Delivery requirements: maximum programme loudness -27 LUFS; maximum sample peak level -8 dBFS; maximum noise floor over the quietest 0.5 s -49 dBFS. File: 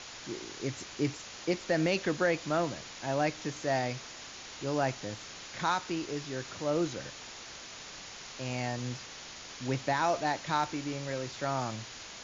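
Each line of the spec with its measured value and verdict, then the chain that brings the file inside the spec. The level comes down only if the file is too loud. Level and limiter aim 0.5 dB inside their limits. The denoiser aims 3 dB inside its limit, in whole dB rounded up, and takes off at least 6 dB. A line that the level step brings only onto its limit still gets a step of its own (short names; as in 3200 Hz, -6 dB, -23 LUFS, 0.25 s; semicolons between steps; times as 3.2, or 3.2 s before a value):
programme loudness -34.0 LUFS: OK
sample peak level -16.5 dBFS: OK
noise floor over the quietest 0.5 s -46 dBFS: fail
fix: denoiser 6 dB, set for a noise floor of -46 dBFS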